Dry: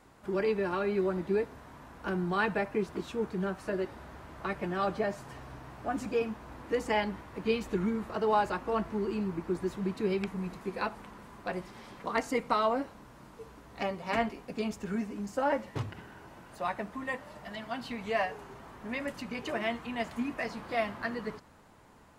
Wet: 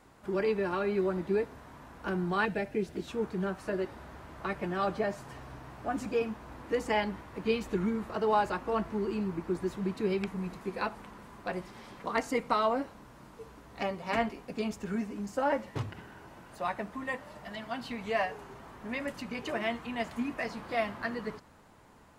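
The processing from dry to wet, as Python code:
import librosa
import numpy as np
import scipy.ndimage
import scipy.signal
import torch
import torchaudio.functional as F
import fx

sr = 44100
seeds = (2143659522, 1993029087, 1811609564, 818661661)

y = fx.peak_eq(x, sr, hz=1100.0, db=-14.5, octaves=0.7, at=(2.45, 3.08))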